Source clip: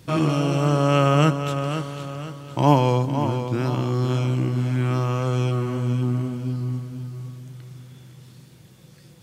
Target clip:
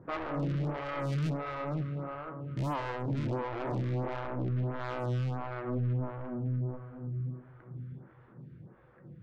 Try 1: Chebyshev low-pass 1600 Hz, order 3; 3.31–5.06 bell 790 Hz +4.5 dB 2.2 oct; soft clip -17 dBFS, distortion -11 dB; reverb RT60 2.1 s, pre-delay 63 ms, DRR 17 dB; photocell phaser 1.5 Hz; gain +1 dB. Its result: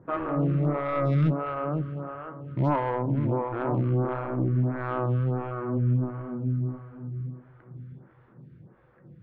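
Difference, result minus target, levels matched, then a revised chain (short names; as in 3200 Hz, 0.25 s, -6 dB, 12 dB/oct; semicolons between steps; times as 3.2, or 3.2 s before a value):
soft clip: distortion -7 dB
Chebyshev low-pass 1600 Hz, order 3; 3.31–5.06 bell 790 Hz +4.5 dB 2.2 oct; soft clip -29 dBFS, distortion -4 dB; reverb RT60 2.1 s, pre-delay 63 ms, DRR 17 dB; photocell phaser 1.5 Hz; gain +1 dB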